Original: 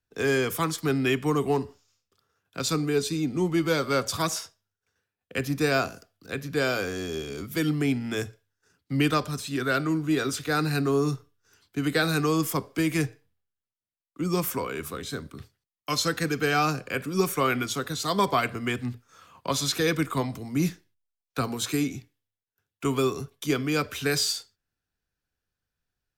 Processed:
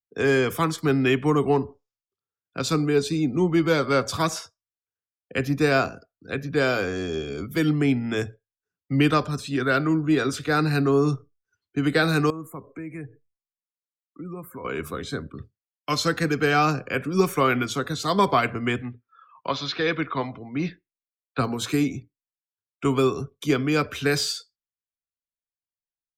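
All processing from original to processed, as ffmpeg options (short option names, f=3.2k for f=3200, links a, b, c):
-filter_complex "[0:a]asettb=1/sr,asplit=3[a][b][c];[a]atrim=end=12.304[d];[b]atrim=start=12.3:end=14.65,asetpts=PTS-STARTPTS,afade=t=in:d=0.004:c=qsin,afade=t=out:st=2.346:d=0.004:c=qsin,acompressor=threshold=-43dB:ratio=2.5:attack=3.2:release=140:knee=1:detection=peak,asuperstop=centerf=4200:order=4:qfactor=0.92[e];[c]atrim=start=14.646[f];[d][e]acrossfade=d=0.004:c1=hsin:c2=qsin[g];[g][f]acrossfade=d=0.004:c1=qsin:c2=hsin,asettb=1/sr,asplit=3[h][i][j];[h]atrim=end=18.824[k];[i]atrim=start=18.82:end=21.39,asetpts=PTS-STARTPTS,afade=t=in:d=0.004:c=qsin,afade=t=out:st=2.566:d=0.004:c=qsin,lowpass=f=4.5k:w=0.5412,lowpass=f=4.5k:w=1.3066,lowshelf=f=350:g=-9[l];[j]atrim=start=21.386[m];[k][l]acrossfade=d=0.004:c1=hsin:c2=qsin[n];[n][m]acrossfade=d=0.004:c1=qsin:c2=hsin,afftdn=nr=28:nf=-50,highshelf=f=5.1k:g=-9,volume=4dB"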